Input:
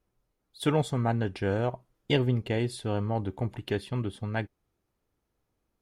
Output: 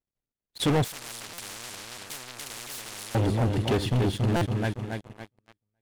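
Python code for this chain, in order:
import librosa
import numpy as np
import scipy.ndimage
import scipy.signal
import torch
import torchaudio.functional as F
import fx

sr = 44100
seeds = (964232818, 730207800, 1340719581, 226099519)

y = fx.cvsd(x, sr, bps=64000)
y = fx.peak_eq(y, sr, hz=1100.0, db=-5.5, octaves=1.1)
y = fx.echo_feedback(y, sr, ms=279, feedback_pct=46, wet_db=-7)
y = fx.leveller(y, sr, passes=5)
y = fx.high_shelf(y, sr, hz=9800.0, db=-8.0)
y = fx.buffer_glitch(y, sr, at_s=(1.33, 4.36), block=256, repeats=8)
y = fx.spectral_comp(y, sr, ratio=10.0, at=(0.84, 3.15))
y = y * librosa.db_to_amplitude(-6.0)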